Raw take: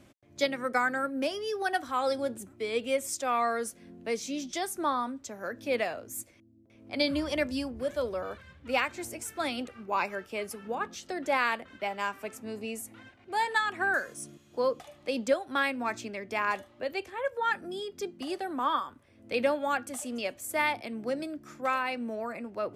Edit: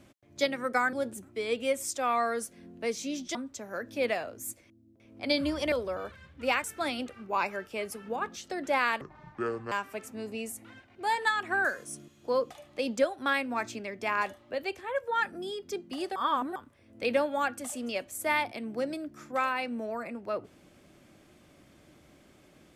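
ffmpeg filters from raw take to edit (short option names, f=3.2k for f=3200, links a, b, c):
-filter_complex "[0:a]asplit=9[a][b][c][d][e][f][g][h][i];[a]atrim=end=0.932[j];[b]atrim=start=2.168:end=4.592[k];[c]atrim=start=5.048:end=7.422[l];[d]atrim=start=7.978:end=8.902[m];[e]atrim=start=9.228:end=11.604[n];[f]atrim=start=11.6:end=12.01,asetpts=PTS-STARTPTS,asetrate=25578,aresample=44100,atrim=end_sample=31174,asetpts=PTS-STARTPTS[o];[g]atrim=start=12.006:end=18.452[p];[h]atrim=start=18.448:end=18.852,asetpts=PTS-STARTPTS,areverse[q];[i]atrim=start=18.848[r];[j][k]acrossfade=d=0.004:c1=hsin:c2=hsin[s];[s][l]acrossfade=d=0.004:c1=hsin:c2=hsin[t];[t][m]acrossfade=d=0.004:c1=hsin:c2=hsin[u];[u][n]acrossfade=d=0.004:c1=hsin:c2=hsin[v];[v][o]acrossfade=d=0.004:c1=hsin:c2=hsin[w];[w][p]acrossfade=d=0.004:c1=hsin:c2=hsin[x];[x][q]acrossfade=d=0.004:c1=hsin:c2=hsin[y];[y][r]acrossfade=d=0.004:c1=hsin:c2=hsin"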